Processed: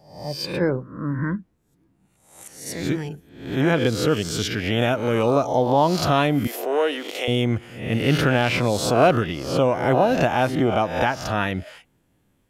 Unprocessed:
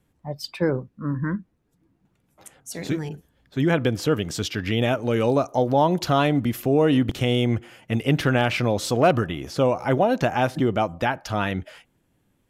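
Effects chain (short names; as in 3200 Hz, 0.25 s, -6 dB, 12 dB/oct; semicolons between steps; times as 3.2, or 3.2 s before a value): spectral swells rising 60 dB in 0.60 s; 6.47–7.28 HPF 410 Hz 24 dB/oct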